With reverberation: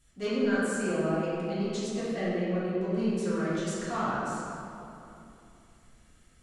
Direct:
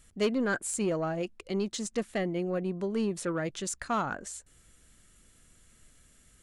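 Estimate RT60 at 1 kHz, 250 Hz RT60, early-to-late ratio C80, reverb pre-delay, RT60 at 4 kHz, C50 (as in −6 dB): 2.7 s, 3.4 s, −2.0 dB, 3 ms, 1.6 s, −4.5 dB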